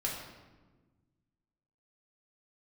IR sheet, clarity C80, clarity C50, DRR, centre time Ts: 5.0 dB, 3.0 dB, -4.0 dB, 53 ms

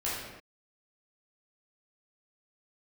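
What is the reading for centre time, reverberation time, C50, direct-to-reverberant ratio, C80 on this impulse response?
78 ms, no single decay rate, -0.5 dB, -9.5 dB, 2.5 dB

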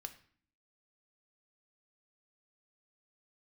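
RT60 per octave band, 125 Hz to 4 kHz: 0.70 s, 0.85 s, 0.50 s, 0.50 s, 0.50 s, 0.45 s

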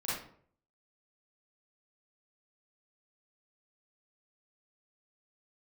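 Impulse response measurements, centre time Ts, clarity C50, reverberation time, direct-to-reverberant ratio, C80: 62 ms, -1.5 dB, 0.55 s, -10.0 dB, 5.5 dB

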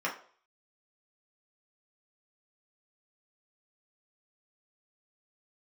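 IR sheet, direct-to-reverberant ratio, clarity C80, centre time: -4.5 dB, 14.5 dB, 21 ms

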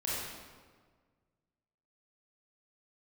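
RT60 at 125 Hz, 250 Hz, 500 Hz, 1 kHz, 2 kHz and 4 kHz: 2.1 s, 1.8 s, 1.7 s, 1.5 s, 1.3 s, 1.1 s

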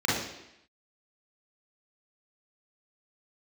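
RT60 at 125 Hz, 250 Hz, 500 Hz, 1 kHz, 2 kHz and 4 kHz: 0.70 s, 0.85 s, 0.80 s, 0.85 s, 0.90 s, 0.85 s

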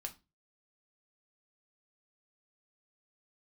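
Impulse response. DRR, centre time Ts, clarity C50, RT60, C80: 4.0 dB, 7 ms, 16.0 dB, 0.25 s, 24.0 dB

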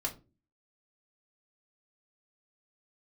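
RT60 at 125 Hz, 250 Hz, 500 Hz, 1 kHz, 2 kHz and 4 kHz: 0.50 s, 0.55 s, 0.35 s, 0.25 s, 0.20 s, 0.20 s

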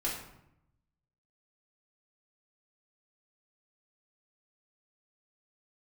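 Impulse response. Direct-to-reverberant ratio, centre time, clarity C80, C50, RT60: -6.0 dB, 41 ms, 7.0 dB, 4.0 dB, 0.80 s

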